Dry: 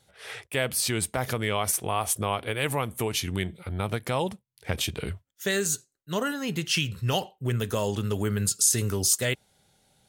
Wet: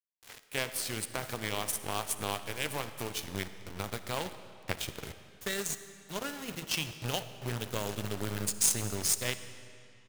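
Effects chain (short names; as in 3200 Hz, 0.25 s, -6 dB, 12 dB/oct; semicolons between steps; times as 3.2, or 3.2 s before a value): de-hum 85.42 Hz, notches 22; in parallel at -2 dB: compressor 12:1, threshold -38 dBFS, peak gain reduction 20.5 dB; on the sum: frequency-shifting echo 0.228 s, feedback 31%, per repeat +57 Hz, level -21 dB; bit-crush 5-bit; power-law curve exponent 2; digital reverb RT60 2.6 s, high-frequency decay 0.85×, pre-delay 20 ms, DRR 11.5 dB; gain +1.5 dB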